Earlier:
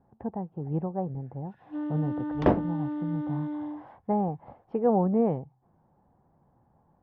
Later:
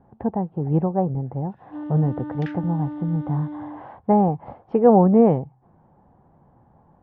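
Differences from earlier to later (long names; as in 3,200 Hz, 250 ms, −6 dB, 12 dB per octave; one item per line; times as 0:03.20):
speech +9.5 dB
second sound: add Butterworth high-pass 1,400 Hz 96 dB per octave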